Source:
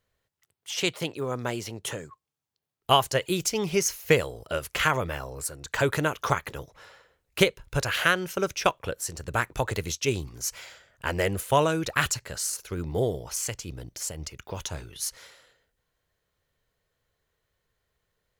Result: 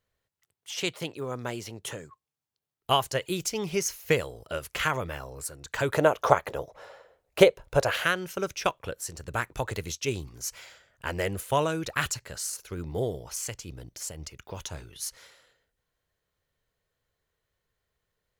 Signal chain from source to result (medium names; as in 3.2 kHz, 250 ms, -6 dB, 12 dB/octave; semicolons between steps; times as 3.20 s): 5.94–7.97 s: peaking EQ 620 Hz +14 dB 1.4 oct; trim -3.5 dB